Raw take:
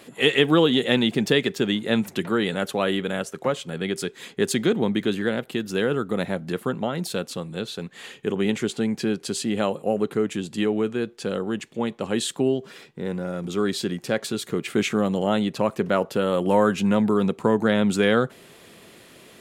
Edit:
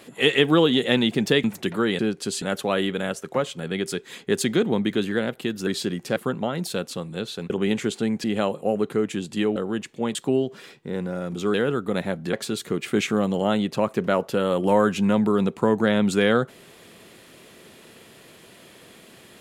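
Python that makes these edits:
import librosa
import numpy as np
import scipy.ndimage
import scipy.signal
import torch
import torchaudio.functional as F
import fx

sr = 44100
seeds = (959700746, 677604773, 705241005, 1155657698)

y = fx.edit(x, sr, fx.cut(start_s=1.44, length_s=0.53),
    fx.swap(start_s=5.77, length_s=0.79, other_s=13.66, other_length_s=0.49),
    fx.cut(start_s=7.9, length_s=0.38),
    fx.move(start_s=9.02, length_s=0.43, to_s=2.52),
    fx.cut(start_s=10.77, length_s=0.57),
    fx.cut(start_s=11.93, length_s=0.34), tone=tone)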